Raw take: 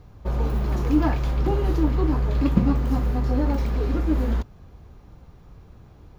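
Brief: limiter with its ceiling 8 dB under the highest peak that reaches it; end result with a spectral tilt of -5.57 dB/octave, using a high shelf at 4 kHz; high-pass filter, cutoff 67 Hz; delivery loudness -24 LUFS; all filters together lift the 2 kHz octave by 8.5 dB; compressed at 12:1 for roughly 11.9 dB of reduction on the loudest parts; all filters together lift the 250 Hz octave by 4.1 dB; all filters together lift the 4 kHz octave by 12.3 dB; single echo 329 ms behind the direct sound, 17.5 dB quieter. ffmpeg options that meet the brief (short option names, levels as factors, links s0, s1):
-af "highpass=67,equalizer=f=250:t=o:g=5,equalizer=f=2000:t=o:g=7,highshelf=f=4000:g=8,equalizer=f=4000:t=o:g=8.5,acompressor=threshold=0.0794:ratio=12,alimiter=limit=0.0891:level=0:latency=1,aecho=1:1:329:0.133,volume=2.11"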